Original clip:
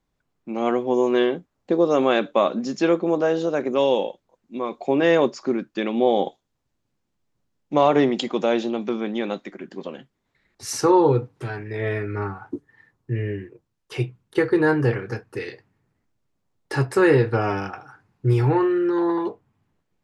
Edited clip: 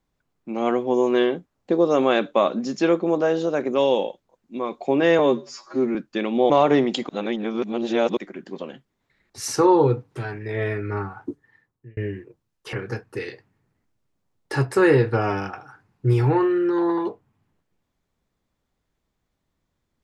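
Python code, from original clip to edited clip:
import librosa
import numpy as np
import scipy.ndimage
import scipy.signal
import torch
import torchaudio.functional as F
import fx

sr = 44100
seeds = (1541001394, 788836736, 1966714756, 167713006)

y = fx.edit(x, sr, fx.stretch_span(start_s=5.19, length_s=0.38, factor=2.0),
    fx.cut(start_s=6.12, length_s=1.63),
    fx.reverse_span(start_s=8.34, length_s=1.08),
    fx.fade_out_span(start_s=12.51, length_s=0.71),
    fx.cut(start_s=13.98, length_s=0.95), tone=tone)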